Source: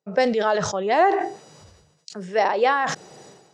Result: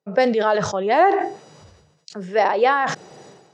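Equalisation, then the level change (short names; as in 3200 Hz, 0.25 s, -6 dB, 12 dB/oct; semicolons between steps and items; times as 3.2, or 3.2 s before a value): HPF 53 Hz; high shelf 6700 Hz -10 dB; +2.5 dB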